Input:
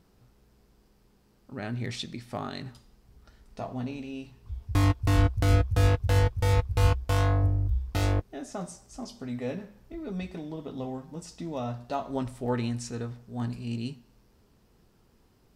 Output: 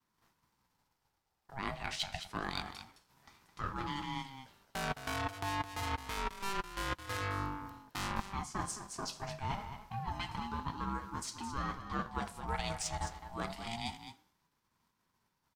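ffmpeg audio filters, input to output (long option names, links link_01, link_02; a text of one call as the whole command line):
ffmpeg -i in.wav -filter_complex "[0:a]agate=range=-33dB:threshold=-52dB:ratio=3:detection=peak,highpass=frequency=340:width=0.5412,highpass=frequency=340:width=1.3066,areverse,acompressor=threshold=-39dB:ratio=8,areverse,aeval=exprs='0.0473*(cos(1*acos(clip(val(0)/0.0473,-1,1)))-cos(1*PI/2))+0.00168*(cos(7*acos(clip(val(0)/0.0473,-1,1)))-cos(7*PI/2))':channel_layout=same,asplit=2[link_01][link_02];[link_02]aecho=0:1:214:0.299[link_03];[link_01][link_03]amix=inputs=2:normalize=0,aeval=exprs='val(0)*sin(2*PI*490*n/s+490*0.2/0.27*sin(2*PI*0.27*n/s))':channel_layout=same,volume=9dB" out.wav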